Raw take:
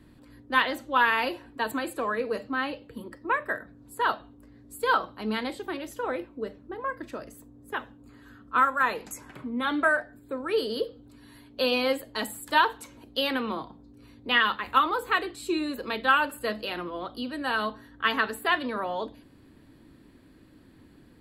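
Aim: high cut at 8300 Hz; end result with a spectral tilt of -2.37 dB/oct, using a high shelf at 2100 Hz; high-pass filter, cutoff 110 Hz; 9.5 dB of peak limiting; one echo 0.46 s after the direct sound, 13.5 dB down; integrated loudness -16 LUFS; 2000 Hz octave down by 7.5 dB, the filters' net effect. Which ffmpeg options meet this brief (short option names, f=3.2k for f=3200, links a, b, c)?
-af "highpass=110,lowpass=8.3k,equalizer=f=2k:t=o:g=-6.5,highshelf=f=2.1k:g=-7,alimiter=limit=-21.5dB:level=0:latency=1,aecho=1:1:460:0.211,volume=17.5dB"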